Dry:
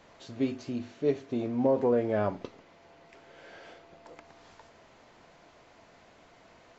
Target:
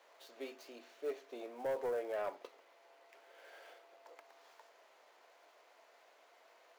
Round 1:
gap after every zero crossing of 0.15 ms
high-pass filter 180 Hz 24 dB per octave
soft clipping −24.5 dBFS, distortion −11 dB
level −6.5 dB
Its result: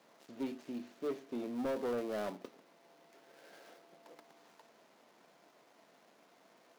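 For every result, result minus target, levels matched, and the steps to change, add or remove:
250 Hz band +11.0 dB; gap after every zero crossing: distortion +15 dB
change: high-pass filter 440 Hz 24 dB per octave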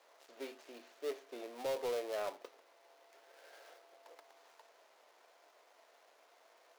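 gap after every zero crossing: distortion +15 dB
change: gap after every zero crossing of 0.051 ms

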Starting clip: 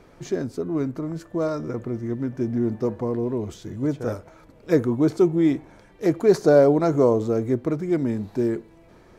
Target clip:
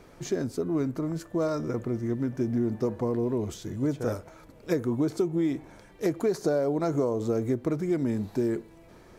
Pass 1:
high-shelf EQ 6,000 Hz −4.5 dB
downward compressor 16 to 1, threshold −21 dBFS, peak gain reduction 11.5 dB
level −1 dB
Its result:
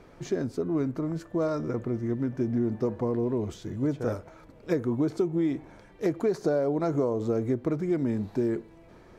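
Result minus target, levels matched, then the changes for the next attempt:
8,000 Hz band −6.5 dB
change: high-shelf EQ 6,000 Hz +7 dB

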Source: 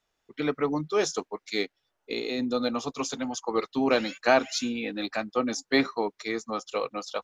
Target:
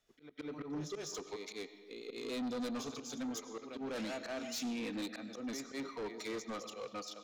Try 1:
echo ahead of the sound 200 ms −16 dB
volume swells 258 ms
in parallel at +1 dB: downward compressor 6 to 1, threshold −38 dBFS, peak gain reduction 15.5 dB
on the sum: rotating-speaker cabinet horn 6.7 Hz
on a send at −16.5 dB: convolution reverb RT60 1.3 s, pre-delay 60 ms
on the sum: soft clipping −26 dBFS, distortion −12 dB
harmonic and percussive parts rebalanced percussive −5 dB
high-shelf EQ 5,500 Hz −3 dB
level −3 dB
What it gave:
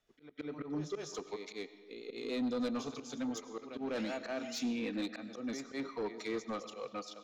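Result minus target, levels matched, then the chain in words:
8,000 Hz band −5.0 dB; soft clipping: distortion −5 dB
echo ahead of the sound 200 ms −16 dB
volume swells 258 ms
in parallel at +1 dB: downward compressor 6 to 1, threshold −38 dBFS, peak gain reduction 15.5 dB
on the sum: rotating-speaker cabinet horn 6.7 Hz
on a send at −16.5 dB: convolution reverb RT60 1.3 s, pre-delay 60 ms
on the sum: soft clipping −32 dBFS, distortion −7 dB
harmonic and percussive parts rebalanced percussive −5 dB
high-shelf EQ 5,500 Hz +5 dB
level −3 dB

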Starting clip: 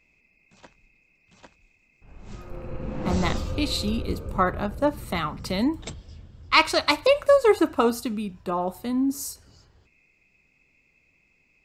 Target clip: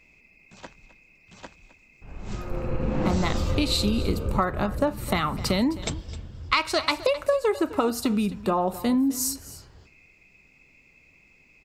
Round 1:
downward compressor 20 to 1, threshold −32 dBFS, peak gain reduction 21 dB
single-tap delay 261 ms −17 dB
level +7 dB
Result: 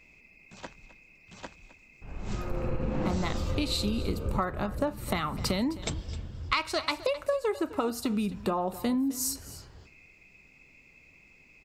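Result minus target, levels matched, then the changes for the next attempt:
downward compressor: peak gain reduction +5.5 dB
change: downward compressor 20 to 1, threshold −26 dBFS, peak gain reduction 15.5 dB

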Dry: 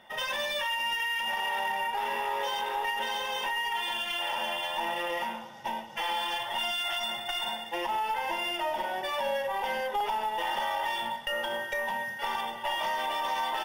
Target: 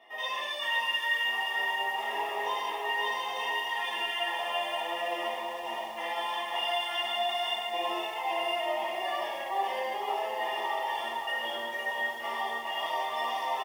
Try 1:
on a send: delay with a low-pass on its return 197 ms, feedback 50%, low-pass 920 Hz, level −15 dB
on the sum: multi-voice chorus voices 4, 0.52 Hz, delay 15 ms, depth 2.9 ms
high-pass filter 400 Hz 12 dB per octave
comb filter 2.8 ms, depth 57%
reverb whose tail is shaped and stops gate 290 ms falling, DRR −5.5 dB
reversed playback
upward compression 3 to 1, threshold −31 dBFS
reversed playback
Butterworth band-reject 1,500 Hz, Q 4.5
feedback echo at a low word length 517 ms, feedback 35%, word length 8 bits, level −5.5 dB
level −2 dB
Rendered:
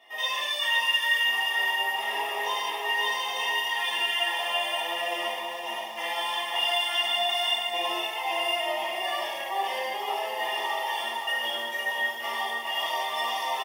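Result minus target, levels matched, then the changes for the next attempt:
4,000 Hz band +2.5 dB
add after high-pass filter: high-shelf EQ 2,500 Hz −11.5 dB

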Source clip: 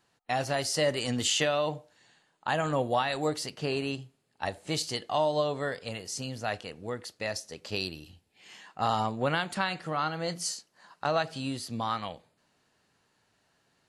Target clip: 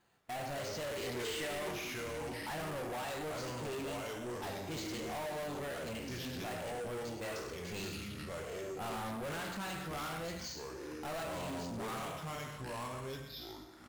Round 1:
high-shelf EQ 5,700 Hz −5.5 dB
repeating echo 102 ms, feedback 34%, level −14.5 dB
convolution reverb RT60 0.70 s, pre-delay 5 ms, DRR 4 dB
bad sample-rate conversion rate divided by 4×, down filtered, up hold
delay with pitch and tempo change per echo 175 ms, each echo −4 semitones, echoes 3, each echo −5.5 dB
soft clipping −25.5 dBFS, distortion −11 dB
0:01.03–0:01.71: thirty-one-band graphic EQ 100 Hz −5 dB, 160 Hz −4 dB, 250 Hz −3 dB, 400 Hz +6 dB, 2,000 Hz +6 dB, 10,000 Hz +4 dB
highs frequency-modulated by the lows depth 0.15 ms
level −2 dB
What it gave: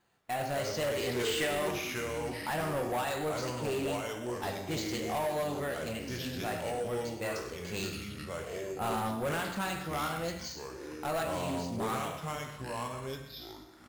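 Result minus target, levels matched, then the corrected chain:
soft clipping: distortion −7 dB
high-shelf EQ 5,700 Hz −5.5 dB
repeating echo 102 ms, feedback 34%, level −14.5 dB
convolution reverb RT60 0.70 s, pre-delay 5 ms, DRR 4 dB
bad sample-rate conversion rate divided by 4×, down filtered, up hold
delay with pitch and tempo change per echo 175 ms, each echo −4 semitones, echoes 3, each echo −5.5 dB
soft clipping −36 dBFS, distortion −5 dB
0:01.03–0:01.71: thirty-one-band graphic EQ 100 Hz −5 dB, 160 Hz −4 dB, 250 Hz −3 dB, 400 Hz +6 dB, 2,000 Hz +6 dB, 10,000 Hz +4 dB
highs frequency-modulated by the lows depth 0.15 ms
level −2 dB

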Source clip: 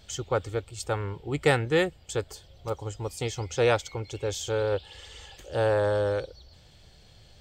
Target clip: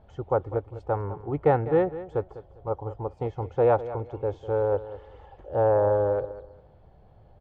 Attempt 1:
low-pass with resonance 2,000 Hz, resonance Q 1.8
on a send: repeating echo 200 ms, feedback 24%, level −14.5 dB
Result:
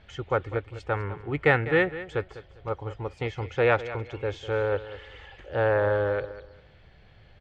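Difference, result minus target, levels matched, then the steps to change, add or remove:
2,000 Hz band +15.0 dB
change: low-pass with resonance 870 Hz, resonance Q 1.8

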